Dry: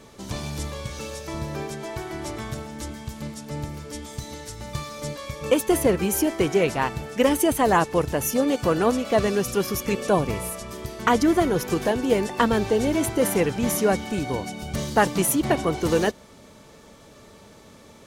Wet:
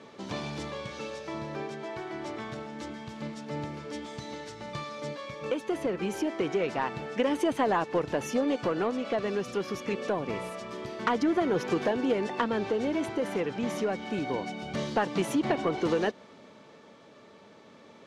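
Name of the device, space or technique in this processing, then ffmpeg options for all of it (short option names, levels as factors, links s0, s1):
AM radio: -af "highpass=190,lowpass=3800,acompressor=threshold=0.0891:ratio=6,asoftclip=type=tanh:threshold=0.168,tremolo=f=0.26:d=0.34"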